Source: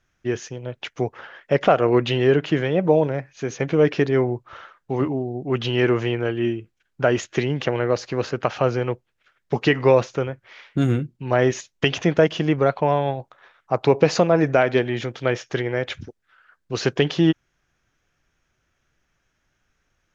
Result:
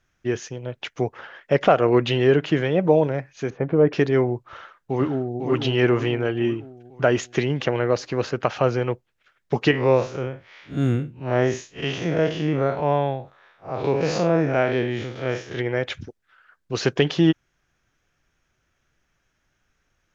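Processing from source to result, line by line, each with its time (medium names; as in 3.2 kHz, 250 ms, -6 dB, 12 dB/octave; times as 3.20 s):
3.50–3.93 s: low-pass 1.2 kHz
4.49–5.40 s: echo throw 500 ms, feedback 50%, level -5 dB
9.71–15.59 s: spectral blur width 112 ms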